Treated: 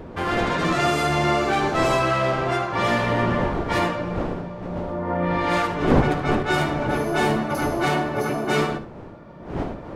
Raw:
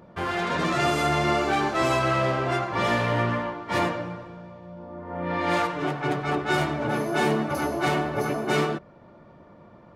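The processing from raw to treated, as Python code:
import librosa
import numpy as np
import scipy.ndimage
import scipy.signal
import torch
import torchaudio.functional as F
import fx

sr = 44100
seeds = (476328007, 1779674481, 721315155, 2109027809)

y = fx.recorder_agc(x, sr, target_db=-17.0, rise_db_per_s=7.6, max_gain_db=30)
y = fx.dmg_wind(y, sr, seeds[0], corner_hz=460.0, level_db=-32.0)
y = fx.room_early_taps(y, sr, ms=(56, 74), db=(-15.0, -14.0))
y = y * 10.0 ** (2.0 / 20.0)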